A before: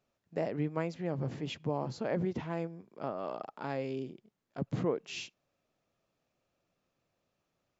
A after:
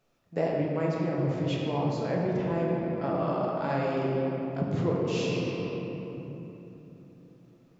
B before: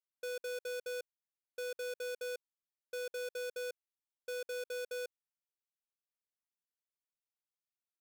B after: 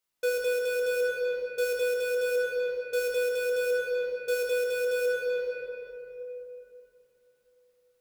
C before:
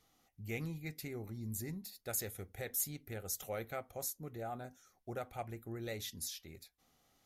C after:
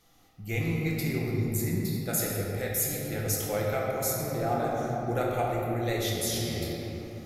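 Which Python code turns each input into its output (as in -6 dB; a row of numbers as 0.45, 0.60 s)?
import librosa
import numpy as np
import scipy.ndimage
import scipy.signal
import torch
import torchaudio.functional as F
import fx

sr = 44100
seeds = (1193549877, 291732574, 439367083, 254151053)

y = fx.room_shoebox(x, sr, seeds[0], volume_m3=180.0, walls='hard', distance_m=0.73)
y = fx.rider(y, sr, range_db=5, speed_s=0.5)
y = y * 10.0 ** (-30 / 20.0) / np.sqrt(np.mean(np.square(y)))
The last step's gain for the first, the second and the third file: +1.5, +7.5, +8.0 dB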